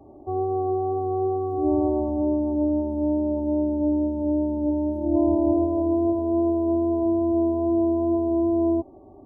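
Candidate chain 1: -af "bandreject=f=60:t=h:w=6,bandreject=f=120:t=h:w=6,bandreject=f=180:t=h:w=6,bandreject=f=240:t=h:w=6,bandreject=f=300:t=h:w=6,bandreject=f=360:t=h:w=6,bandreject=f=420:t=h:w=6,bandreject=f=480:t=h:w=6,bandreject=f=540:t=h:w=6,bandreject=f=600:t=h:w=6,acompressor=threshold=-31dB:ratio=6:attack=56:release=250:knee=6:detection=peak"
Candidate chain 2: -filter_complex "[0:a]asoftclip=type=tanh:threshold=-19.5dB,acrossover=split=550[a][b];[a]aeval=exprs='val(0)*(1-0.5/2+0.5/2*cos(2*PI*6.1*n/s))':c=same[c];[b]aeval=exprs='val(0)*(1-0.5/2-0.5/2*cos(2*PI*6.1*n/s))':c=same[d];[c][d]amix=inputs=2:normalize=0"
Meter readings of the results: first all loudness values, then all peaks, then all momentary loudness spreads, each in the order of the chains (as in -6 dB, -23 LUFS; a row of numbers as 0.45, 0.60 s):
-32.5, -28.0 LUFS; -21.5, -19.0 dBFS; 3, 2 LU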